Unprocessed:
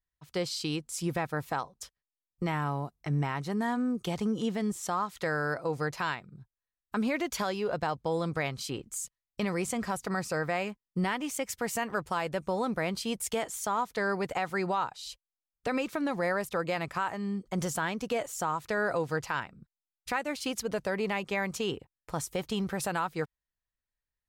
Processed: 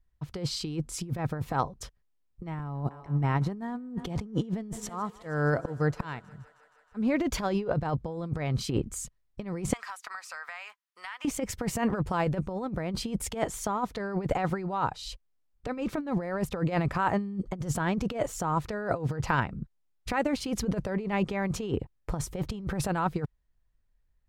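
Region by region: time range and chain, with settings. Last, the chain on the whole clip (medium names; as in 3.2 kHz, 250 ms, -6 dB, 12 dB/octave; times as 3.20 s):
2.59–7.27 s: gate -42 dBFS, range -12 dB + slow attack 419 ms + thinning echo 158 ms, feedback 82%, high-pass 350 Hz, level -23 dB
9.73–11.25 s: high-pass 1.1 kHz 24 dB/octave + compression 5:1, threshold -42 dBFS
whole clip: tilt EQ -3 dB/octave; compressor with a negative ratio -31 dBFS, ratio -0.5; trim +3 dB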